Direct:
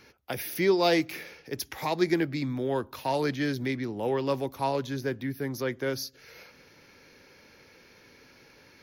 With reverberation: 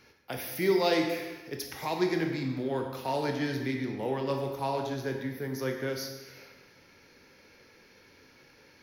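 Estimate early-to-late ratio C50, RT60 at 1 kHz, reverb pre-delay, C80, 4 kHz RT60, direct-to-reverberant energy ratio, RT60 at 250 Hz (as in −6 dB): 5.0 dB, 1.2 s, 17 ms, 6.5 dB, 1.1 s, 2.5 dB, 1.1 s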